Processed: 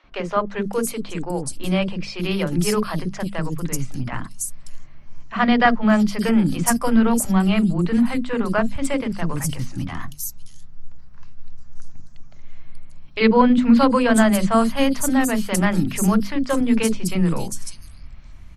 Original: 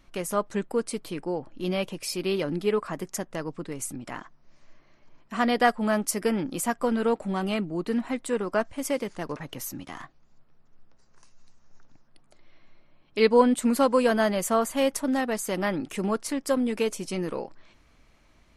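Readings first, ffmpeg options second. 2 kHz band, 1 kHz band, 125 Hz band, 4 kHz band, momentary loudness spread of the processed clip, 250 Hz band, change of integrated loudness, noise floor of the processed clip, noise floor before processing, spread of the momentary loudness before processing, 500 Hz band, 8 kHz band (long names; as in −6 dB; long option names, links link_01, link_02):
+7.0 dB, +5.5 dB, +13.0 dB, +5.5 dB, 14 LU, +9.5 dB, +6.5 dB, −39 dBFS, −60 dBFS, 14 LU, +2.0 dB, +7.0 dB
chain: -filter_complex "[0:a]asubboost=boost=6:cutoff=160,bandreject=frequency=50:width_type=h:width=6,bandreject=frequency=100:width_type=h:width=6,bandreject=frequency=150:width_type=h:width=6,bandreject=frequency=200:width_type=h:width=6,bandreject=frequency=250:width_type=h:width=6,acrossover=split=410|4500[link_01][link_02][link_03];[link_01]adelay=40[link_04];[link_03]adelay=590[link_05];[link_04][link_02][link_05]amix=inputs=3:normalize=0,volume=7.5dB"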